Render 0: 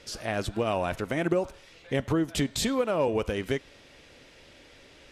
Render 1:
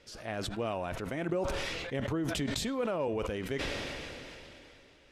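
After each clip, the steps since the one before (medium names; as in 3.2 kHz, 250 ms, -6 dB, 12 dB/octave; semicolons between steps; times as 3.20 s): treble shelf 4.9 kHz -5.5 dB; decay stretcher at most 20 dB/s; trim -7.5 dB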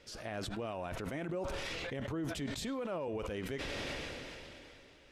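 peak limiter -30.5 dBFS, peak gain reduction 11 dB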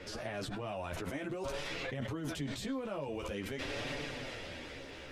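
chorus voices 2, 0.5 Hz, delay 11 ms, depth 4.2 ms; three bands compressed up and down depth 70%; trim +2.5 dB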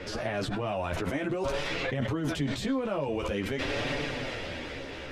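treble shelf 6.3 kHz -8.5 dB; trim +8.5 dB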